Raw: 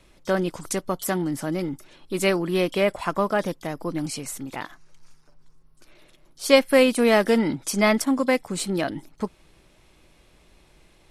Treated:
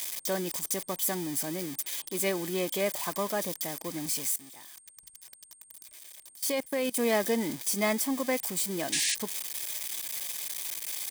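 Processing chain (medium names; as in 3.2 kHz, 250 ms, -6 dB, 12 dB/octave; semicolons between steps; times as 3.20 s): zero-crossing glitches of -15.5 dBFS; 4.33–6.97 s: level held to a coarse grid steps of 20 dB; whistle 8.6 kHz -47 dBFS; comb of notches 1.4 kHz; 8.92–9.15 s: painted sound noise 1.6–10 kHz -20 dBFS; trim -8 dB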